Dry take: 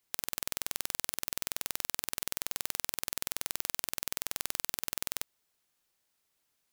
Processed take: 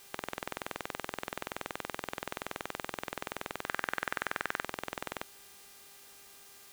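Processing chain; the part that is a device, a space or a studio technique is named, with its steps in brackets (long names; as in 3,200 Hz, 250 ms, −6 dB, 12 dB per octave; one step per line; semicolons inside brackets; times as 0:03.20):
aircraft radio (band-pass filter 370–2,300 Hz; hard clipping −33 dBFS, distortion −7 dB; hum with harmonics 400 Hz, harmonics 32, −70 dBFS −1 dB per octave; white noise bed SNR 13 dB)
0:03.65–0:04.64: parametric band 1,600 Hz +11 dB 0.88 octaves
level +10 dB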